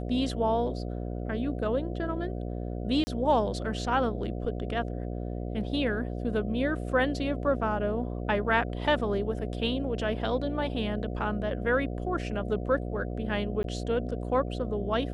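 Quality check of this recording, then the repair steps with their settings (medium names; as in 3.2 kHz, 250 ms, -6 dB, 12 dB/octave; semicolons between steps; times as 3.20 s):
buzz 60 Hz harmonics 12 -34 dBFS
3.04–3.07 s: dropout 30 ms
13.63–13.64 s: dropout 12 ms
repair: de-hum 60 Hz, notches 12; interpolate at 3.04 s, 30 ms; interpolate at 13.63 s, 12 ms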